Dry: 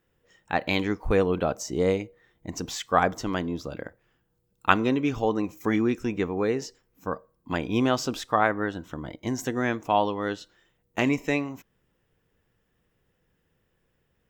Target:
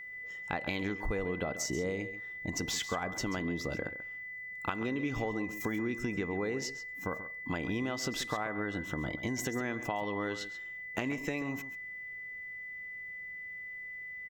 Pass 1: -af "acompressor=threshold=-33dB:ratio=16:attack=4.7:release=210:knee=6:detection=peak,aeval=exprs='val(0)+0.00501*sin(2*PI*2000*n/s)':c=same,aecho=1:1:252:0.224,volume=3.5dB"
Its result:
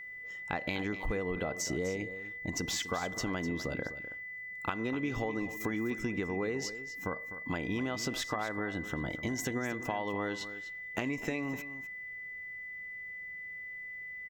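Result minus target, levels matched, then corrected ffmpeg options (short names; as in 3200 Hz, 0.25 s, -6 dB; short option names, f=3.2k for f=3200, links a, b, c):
echo 0.117 s late
-af "acompressor=threshold=-33dB:ratio=16:attack=4.7:release=210:knee=6:detection=peak,aeval=exprs='val(0)+0.00501*sin(2*PI*2000*n/s)':c=same,aecho=1:1:135:0.224,volume=3.5dB"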